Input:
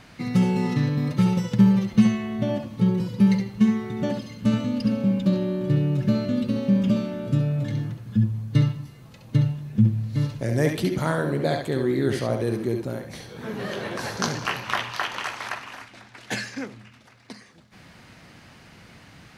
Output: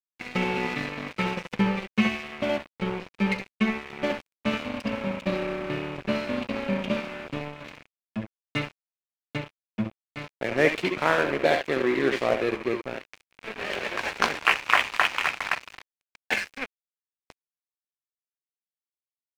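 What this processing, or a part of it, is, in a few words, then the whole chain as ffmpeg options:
pocket radio on a weak battery: -af "highpass=380,lowpass=3100,aeval=exprs='sgn(val(0))*max(abs(val(0))-0.0168,0)':c=same,equalizer=f=2400:t=o:w=0.54:g=9.5,volume=2"

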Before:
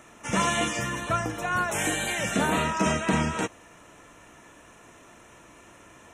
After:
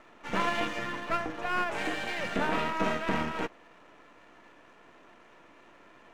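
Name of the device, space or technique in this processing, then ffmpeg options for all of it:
crystal radio: -af "highpass=220,lowpass=2800,aeval=exprs='if(lt(val(0),0),0.251*val(0),val(0))':c=same"

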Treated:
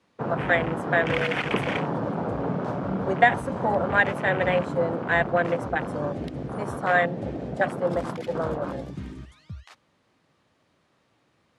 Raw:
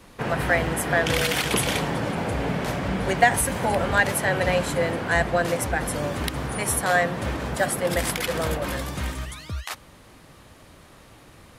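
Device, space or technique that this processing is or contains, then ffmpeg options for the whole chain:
over-cleaned archive recording: -af "highpass=120,lowpass=6200,afwtdn=0.0501"

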